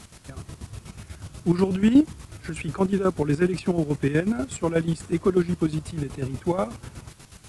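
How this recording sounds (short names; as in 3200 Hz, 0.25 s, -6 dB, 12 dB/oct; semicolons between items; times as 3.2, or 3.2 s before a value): a quantiser's noise floor 8-bit, dither triangular; chopped level 8.2 Hz, depth 65%, duty 45%; AAC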